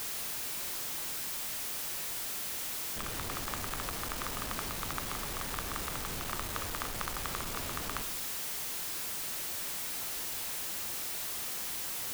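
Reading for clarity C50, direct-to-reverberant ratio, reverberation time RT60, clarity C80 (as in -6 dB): 12.5 dB, 9.5 dB, 0.90 s, 14.5 dB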